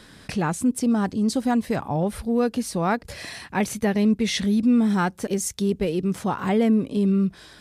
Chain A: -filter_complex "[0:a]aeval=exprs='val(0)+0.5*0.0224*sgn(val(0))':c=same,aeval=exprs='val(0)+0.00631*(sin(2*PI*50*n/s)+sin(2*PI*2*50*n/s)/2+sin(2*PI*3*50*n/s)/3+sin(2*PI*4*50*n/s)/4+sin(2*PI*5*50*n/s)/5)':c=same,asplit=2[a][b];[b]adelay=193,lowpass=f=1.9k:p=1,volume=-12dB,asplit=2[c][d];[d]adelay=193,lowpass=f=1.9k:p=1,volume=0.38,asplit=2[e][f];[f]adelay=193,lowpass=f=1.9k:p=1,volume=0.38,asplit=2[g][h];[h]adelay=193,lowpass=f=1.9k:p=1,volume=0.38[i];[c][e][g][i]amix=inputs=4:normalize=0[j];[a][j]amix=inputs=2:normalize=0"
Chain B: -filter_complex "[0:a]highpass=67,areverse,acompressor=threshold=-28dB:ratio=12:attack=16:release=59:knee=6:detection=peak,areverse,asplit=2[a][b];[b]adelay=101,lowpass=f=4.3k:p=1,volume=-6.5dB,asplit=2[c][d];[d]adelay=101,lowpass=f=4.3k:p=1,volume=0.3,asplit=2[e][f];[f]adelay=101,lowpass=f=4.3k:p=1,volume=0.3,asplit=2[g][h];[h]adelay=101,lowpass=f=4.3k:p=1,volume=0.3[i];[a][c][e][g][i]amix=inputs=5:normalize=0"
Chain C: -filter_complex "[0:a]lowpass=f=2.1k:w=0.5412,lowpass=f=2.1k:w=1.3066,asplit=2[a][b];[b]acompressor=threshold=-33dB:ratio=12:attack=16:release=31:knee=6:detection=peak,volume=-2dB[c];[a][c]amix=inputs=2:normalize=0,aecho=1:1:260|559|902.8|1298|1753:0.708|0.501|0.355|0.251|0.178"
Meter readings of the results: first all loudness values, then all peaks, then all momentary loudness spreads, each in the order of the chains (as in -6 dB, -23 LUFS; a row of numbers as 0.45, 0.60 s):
-22.0, -29.5, -19.0 LUFS; -10.0, -16.0, -6.0 dBFS; 6, 4, 5 LU